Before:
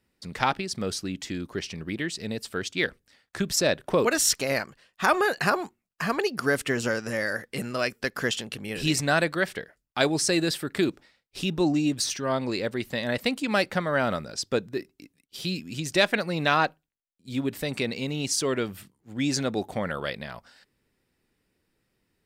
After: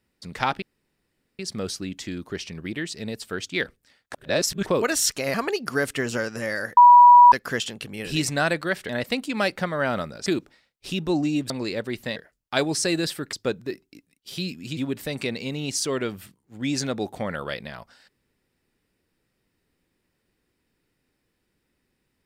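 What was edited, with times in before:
0.62 insert room tone 0.77 s
3.37–3.89 reverse
4.57–6.05 cut
7.48–8.03 bleep 972 Hz -7 dBFS
9.6–10.77 swap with 13.03–14.4
12.01–12.37 cut
15.84–17.33 cut

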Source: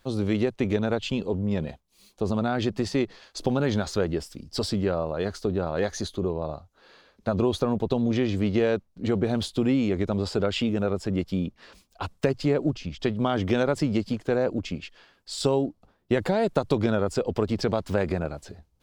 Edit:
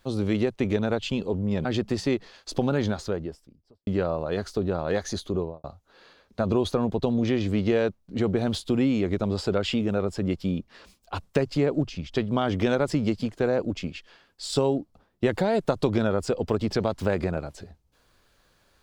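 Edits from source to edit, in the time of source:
1.65–2.53 cut
3.53–4.75 studio fade out
6.26–6.52 studio fade out

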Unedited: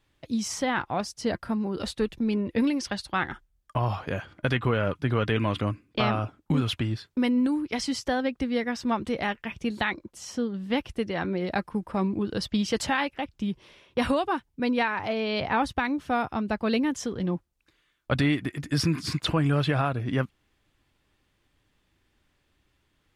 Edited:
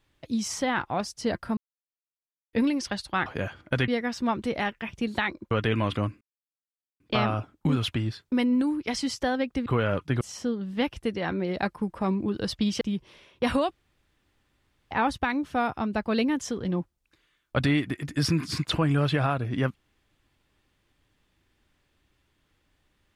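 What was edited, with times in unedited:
1.57–2.53 mute
3.26–3.98 cut
4.6–5.15 swap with 8.51–10.14
5.85 insert silence 0.79 s
12.74–13.36 cut
14.26–15.46 room tone

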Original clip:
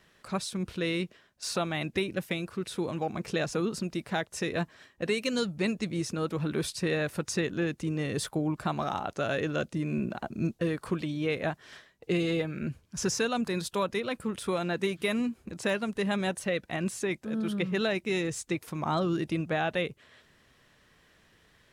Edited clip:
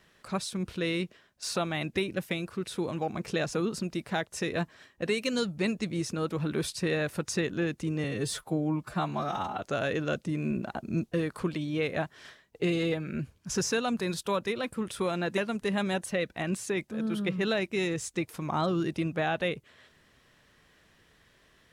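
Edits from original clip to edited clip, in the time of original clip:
8.04–9.09 stretch 1.5×
14.85–15.71 cut

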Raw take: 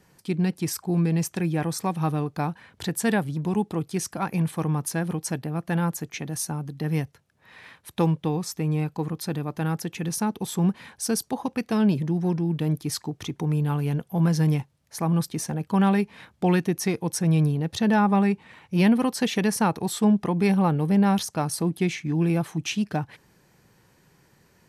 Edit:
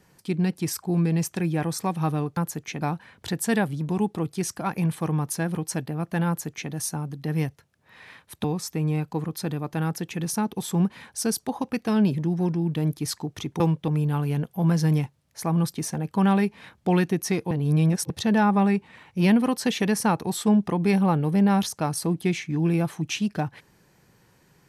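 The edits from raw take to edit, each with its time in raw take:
5.83–6.27 copy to 2.37
8–8.28 move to 13.44
17.07–17.66 reverse

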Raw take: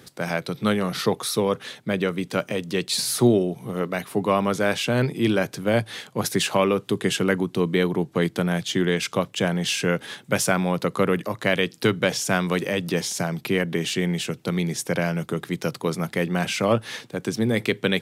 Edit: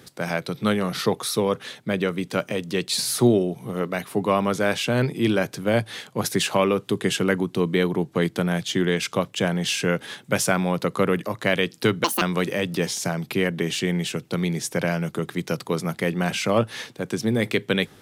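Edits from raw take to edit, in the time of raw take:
12.04–12.36 speed 181%

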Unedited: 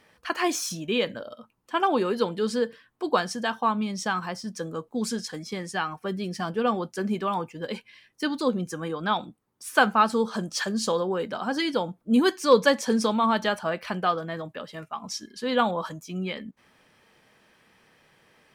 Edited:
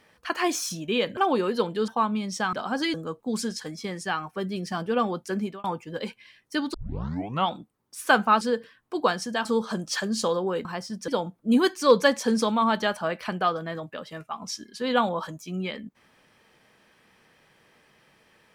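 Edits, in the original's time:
1.17–1.79 cut
2.5–3.54 move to 10.09
4.19–4.62 swap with 11.29–11.7
7.06–7.32 fade out
8.42 tape start 0.77 s

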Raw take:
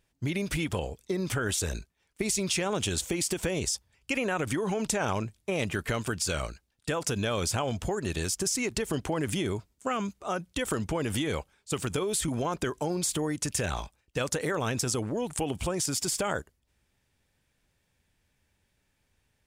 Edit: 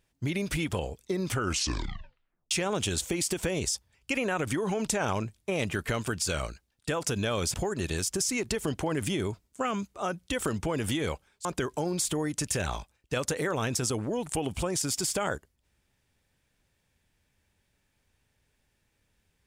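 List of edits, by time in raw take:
1.32 tape stop 1.19 s
7.54–7.8 cut
11.71–12.49 cut

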